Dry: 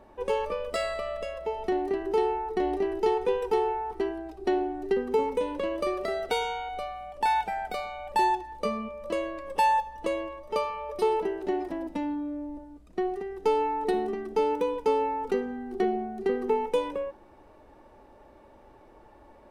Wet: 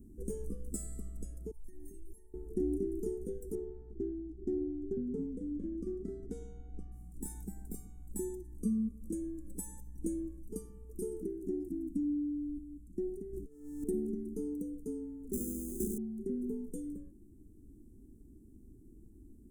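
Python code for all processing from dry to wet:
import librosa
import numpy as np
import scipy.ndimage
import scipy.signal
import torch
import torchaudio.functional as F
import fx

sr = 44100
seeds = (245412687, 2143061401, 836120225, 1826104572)

y = fx.chain(x, sr, fx.high_shelf(hz=3500.0, db=10.0),
    fx.comb_fb(f0_hz=910.0, decay_s=0.19, harmonics='all', damping=0.0, mix_pct=100),
    fx.env_flatten(amount_pct=100), at=(1.51, 2.34))
y = fx.chain(y, sr, fx.lowpass(hz=3400.0, slope=12),
    fx.doppler_dist(depth_ms=0.21), at=(3.55, 6.92))
y = fx.chain(y, sr, fx.over_compress(threshold_db=-32.0, ratio=-0.5),
    fx.running_max(window=17), at=(13.33, 13.84))
y = fx.chain(y, sr, fx.room_flutter(wall_m=5.9, rt60_s=1.2),
    fx.sample_hold(seeds[0], rate_hz=1900.0, jitter_pct=0),
    fx.band_squash(depth_pct=40), at=(15.33, 15.98))
y = scipy.signal.sosfilt(scipy.signal.cheby2(4, 40, [550.0, 4500.0], 'bandstop', fs=sr, output='sos'), y)
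y = fx.rider(y, sr, range_db=5, speed_s=2.0)
y = y * librosa.db_to_amplitude(1.5)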